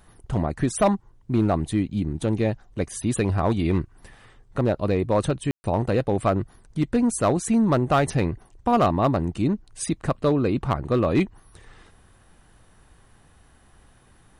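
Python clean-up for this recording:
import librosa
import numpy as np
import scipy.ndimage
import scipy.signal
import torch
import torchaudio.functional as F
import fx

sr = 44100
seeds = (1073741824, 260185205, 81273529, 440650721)

y = fx.fix_declip(x, sr, threshold_db=-12.5)
y = fx.fix_ambience(y, sr, seeds[0], print_start_s=13.22, print_end_s=13.72, start_s=5.51, end_s=5.64)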